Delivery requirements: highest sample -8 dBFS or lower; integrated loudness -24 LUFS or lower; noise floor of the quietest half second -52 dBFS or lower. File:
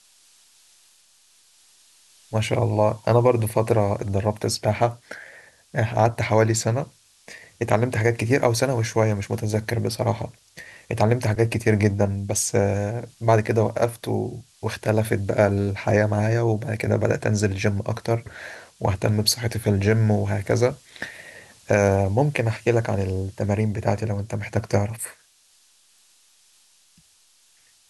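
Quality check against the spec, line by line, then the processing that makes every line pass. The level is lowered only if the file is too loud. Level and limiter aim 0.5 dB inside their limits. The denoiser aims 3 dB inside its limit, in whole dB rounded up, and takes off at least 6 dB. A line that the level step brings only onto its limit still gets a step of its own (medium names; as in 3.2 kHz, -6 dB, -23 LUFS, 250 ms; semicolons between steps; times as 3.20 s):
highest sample -4.5 dBFS: fail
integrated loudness -22.5 LUFS: fail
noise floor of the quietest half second -59 dBFS: pass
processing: trim -2 dB; peak limiter -8.5 dBFS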